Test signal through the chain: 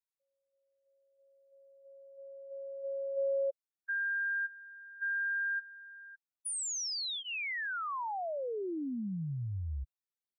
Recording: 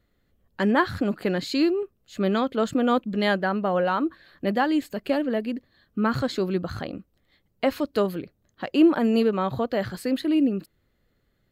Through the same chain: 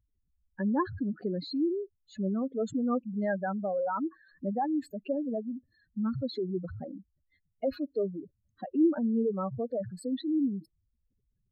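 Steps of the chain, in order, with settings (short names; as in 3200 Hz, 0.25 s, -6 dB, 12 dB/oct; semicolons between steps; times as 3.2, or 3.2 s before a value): spectral contrast raised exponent 3.2; notch 3100 Hz, Q 6.9; gain -6.5 dB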